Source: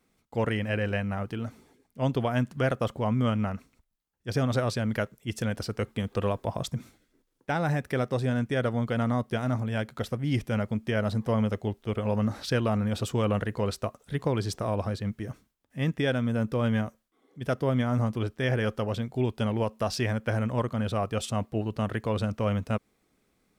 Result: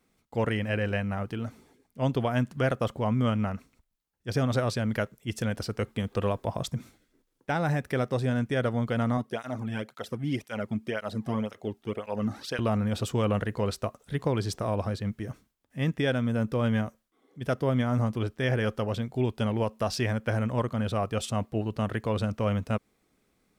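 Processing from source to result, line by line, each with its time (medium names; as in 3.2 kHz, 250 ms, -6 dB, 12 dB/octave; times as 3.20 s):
9.17–12.59 s: cancelling through-zero flanger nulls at 1.9 Hz, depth 2.2 ms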